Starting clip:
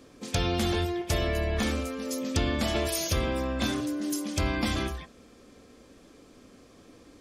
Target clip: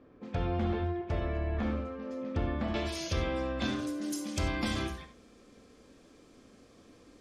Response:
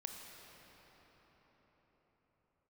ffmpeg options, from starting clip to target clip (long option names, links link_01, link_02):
-filter_complex "[0:a]asetnsamples=nb_out_samples=441:pad=0,asendcmd='2.74 lowpass f 4900;3.79 lowpass f 11000',lowpass=1600[link_01];[1:a]atrim=start_sample=2205,atrim=end_sample=4410[link_02];[link_01][link_02]afir=irnorm=-1:irlink=0"